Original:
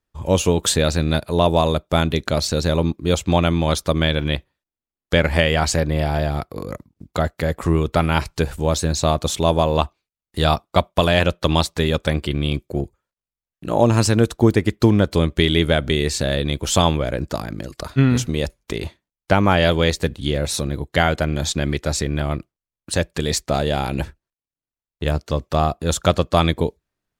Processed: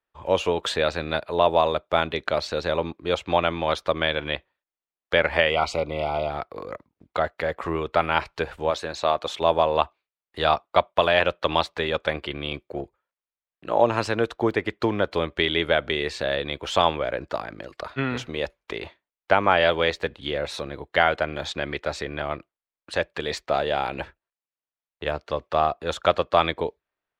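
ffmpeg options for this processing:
-filter_complex "[0:a]asettb=1/sr,asplit=3[s0][s1][s2];[s0]atrim=end=5.504[s3];[s1]atrim=start=5.5:end=6.3,asetpts=PTS-STARTPTS,afade=t=in:d=0.004:c=qsin,afade=t=out:st=0.796:d=0.004:c=qsin,asuperstop=centerf=1700:order=8:qfactor=3[s4];[s2]atrim=start=6.296[s5];[s3][s4]acrossfade=d=0.004:c1=hsin:c2=qsin[s6];[s6][s5]acrossfade=d=0.004:c1=qsin:c2=hsin,asettb=1/sr,asplit=3[s7][s8][s9];[s7]atrim=end=8.704[s10];[s8]atrim=start=8.7:end=9.41,asetpts=PTS-STARTPTS,afade=t=in:d=0.004:c=qsin,afade=t=out:st=0.706:d=0.004:c=qsin,lowshelf=f=190:g=-9.5[s11];[s9]atrim=start=9.406[s12];[s10][s11]acrossfade=d=0.004:c1=hsin:c2=qsin[s13];[s13][s12]acrossfade=d=0.004:c1=qsin:c2=hsin,acrossover=split=420 3700:gain=0.158 1 0.0794[s14][s15][s16];[s14][s15][s16]amix=inputs=3:normalize=0"

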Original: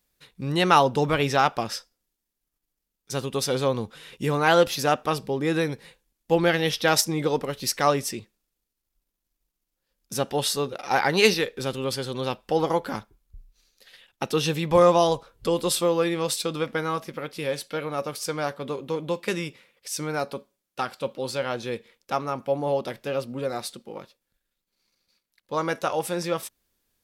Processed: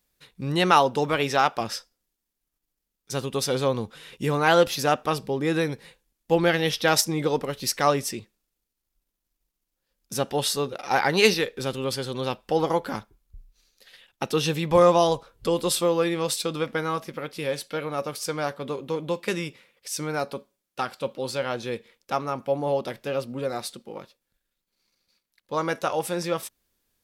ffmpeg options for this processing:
-filter_complex "[0:a]asettb=1/sr,asplit=3[s0][s1][s2];[s0]atrim=end=0.714[s3];[s1]atrim=start=0.71:end=1.61,asetpts=PTS-STARTPTS,afade=t=in:d=0.004:c=qsin,afade=t=out:st=0.896:d=0.004:c=qsin,lowshelf=f=130:g=-11.5[s4];[s2]atrim=start=1.606[s5];[s3][s4]acrossfade=d=0.004:c1=hsin:c2=qsin[s6];[s6][s5]acrossfade=d=0.004:c1=qsin:c2=hsin"

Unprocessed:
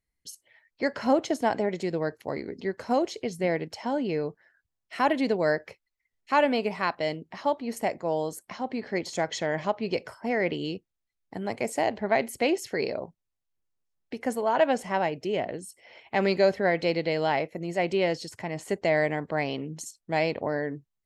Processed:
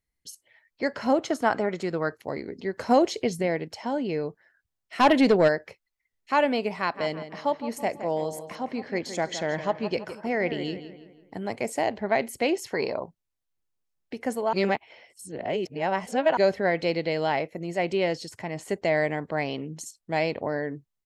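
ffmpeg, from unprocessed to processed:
-filter_complex "[0:a]asettb=1/sr,asplit=3[s0][s1][s2];[s0]atrim=end=1.254[s3];[s1]atrim=start=1.25:end=2.17,asetpts=PTS-STARTPTS,afade=t=in:d=0.004:c=qsin,afade=t=out:st=0.916:d=0.004:c=qsin,equalizer=f=1300:t=o:w=0.49:g=12.5[s4];[s2]atrim=start=2.166[s5];[s3][s4]acrossfade=d=0.004:c1=hsin:c2=qsin[s6];[s6][s5]acrossfade=d=0.004:c1=qsin:c2=hsin,asplit=3[s7][s8][s9];[s7]afade=t=out:st=2.75:d=0.02[s10];[s8]acontrast=34,afade=t=in:st=2.75:d=0.02,afade=t=out:st=3.41:d=0.02[s11];[s9]afade=t=in:st=3.41:d=0.02[s12];[s10][s11][s12]amix=inputs=3:normalize=0,asplit=3[s13][s14][s15];[s13]afade=t=out:st=4.99:d=0.02[s16];[s14]aeval=exprs='0.251*sin(PI/2*1.58*val(0)/0.251)':c=same,afade=t=in:st=4.99:d=0.02,afade=t=out:st=5.47:d=0.02[s17];[s15]afade=t=in:st=5.47:d=0.02[s18];[s16][s17][s18]amix=inputs=3:normalize=0,asplit=3[s19][s20][s21];[s19]afade=t=out:st=6.94:d=0.02[s22];[s20]asplit=2[s23][s24];[s24]adelay=165,lowpass=f=3400:p=1,volume=0.282,asplit=2[s25][s26];[s26]adelay=165,lowpass=f=3400:p=1,volume=0.46,asplit=2[s27][s28];[s28]adelay=165,lowpass=f=3400:p=1,volume=0.46,asplit=2[s29][s30];[s30]adelay=165,lowpass=f=3400:p=1,volume=0.46,asplit=2[s31][s32];[s32]adelay=165,lowpass=f=3400:p=1,volume=0.46[s33];[s23][s25][s27][s29][s31][s33]amix=inputs=6:normalize=0,afade=t=in:st=6.94:d=0.02,afade=t=out:st=11.45:d=0.02[s34];[s21]afade=t=in:st=11.45:d=0.02[s35];[s22][s34][s35]amix=inputs=3:normalize=0,asettb=1/sr,asplit=3[s36][s37][s38];[s36]atrim=end=12.594[s39];[s37]atrim=start=12.59:end=13.03,asetpts=PTS-STARTPTS,afade=t=in:d=0.004:c=qsin,afade=t=out:st=0.436:d=0.004:c=qsin,equalizer=f=990:w=2.4:g=11.5[s40];[s38]atrim=start=13.026[s41];[s39][s40]acrossfade=d=0.004:c1=hsin:c2=qsin[s42];[s42][s41]acrossfade=d=0.004:c1=qsin:c2=hsin,asplit=3[s43][s44][s45];[s43]atrim=end=14.532[s46];[s44]atrim=start=14.528:end=16.372,asetpts=PTS-STARTPTS,areverse[s47];[s45]atrim=start=16.368[s48];[s46][s47]acrossfade=d=0.004:c1=hsin:c2=hsin[s49];[s49][s48]acrossfade=d=0.004:c1=hsin:c2=hsin"

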